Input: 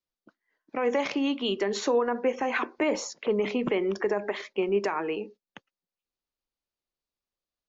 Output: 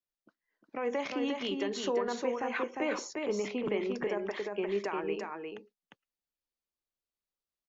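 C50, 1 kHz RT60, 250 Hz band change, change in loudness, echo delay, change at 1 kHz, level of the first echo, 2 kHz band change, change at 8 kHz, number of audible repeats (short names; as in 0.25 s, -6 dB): none, none, -5.5 dB, -5.5 dB, 0.353 s, -5.5 dB, -4.0 dB, -5.5 dB, n/a, 1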